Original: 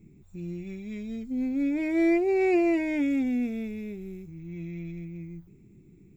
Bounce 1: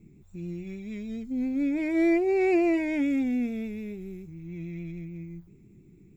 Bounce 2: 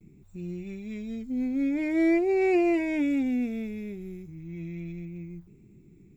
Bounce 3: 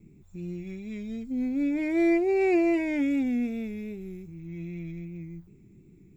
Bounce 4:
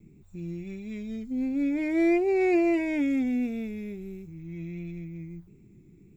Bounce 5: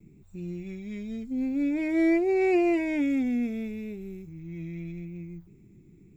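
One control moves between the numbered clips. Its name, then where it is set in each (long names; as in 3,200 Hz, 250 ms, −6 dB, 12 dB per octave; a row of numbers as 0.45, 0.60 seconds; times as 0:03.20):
pitch vibrato, speed: 6.9, 0.42, 2.6, 1.5, 0.82 Hertz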